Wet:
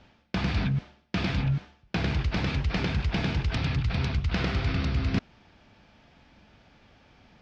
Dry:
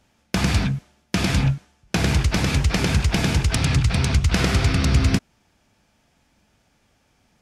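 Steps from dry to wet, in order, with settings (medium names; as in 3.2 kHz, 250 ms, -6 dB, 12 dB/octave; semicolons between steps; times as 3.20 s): reverse; compression 5:1, threshold -32 dBFS, peak gain reduction 17.5 dB; reverse; low-pass 4.5 kHz 24 dB/octave; trim +6.5 dB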